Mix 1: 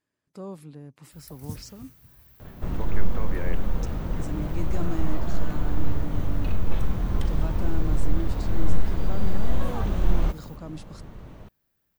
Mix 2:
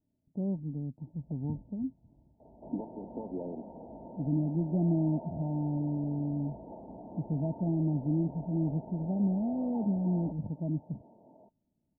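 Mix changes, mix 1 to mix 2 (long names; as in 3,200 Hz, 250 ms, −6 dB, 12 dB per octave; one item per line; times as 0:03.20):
speech: add spectral tilt −4.5 dB per octave
second sound: add high-pass filter 400 Hz 12 dB per octave
master: add Chebyshev low-pass with heavy ripple 930 Hz, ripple 9 dB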